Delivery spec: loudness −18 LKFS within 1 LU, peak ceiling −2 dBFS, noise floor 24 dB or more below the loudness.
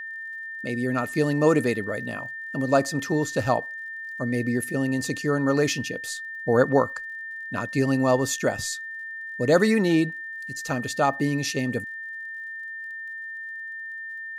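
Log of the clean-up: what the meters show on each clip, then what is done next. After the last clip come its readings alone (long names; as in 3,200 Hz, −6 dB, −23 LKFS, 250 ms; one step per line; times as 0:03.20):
crackle rate 53 per second; interfering tone 1,800 Hz; level of the tone −33 dBFS; integrated loudness −25.5 LKFS; sample peak −5.0 dBFS; target loudness −18.0 LKFS
→ click removal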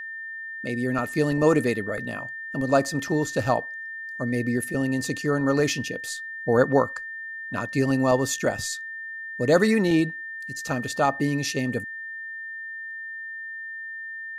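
crackle rate 0.35 per second; interfering tone 1,800 Hz; level of the tone −33 dBFS
→ notch filter 1,800 Hz, Q 30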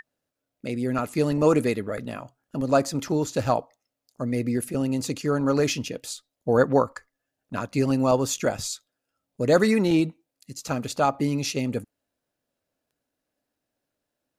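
interfering tone none found; integrated loudness −25.0 LKFS; sample peak −5.5 dBFS; target loudness −18.0 LKFS
→ level +7 dB
brickwall limiter −2 dBFS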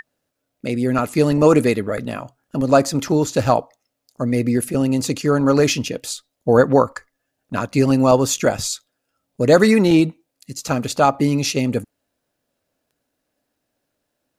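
integrated loudness −18.0 LKFS; sample peak −2.0 dBFS; background noise floor −77 dBFS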